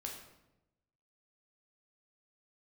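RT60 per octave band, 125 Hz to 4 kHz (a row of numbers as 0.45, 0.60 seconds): 1.3, 1.1, 1.0, 0.85, 0.75, 0.65 seconds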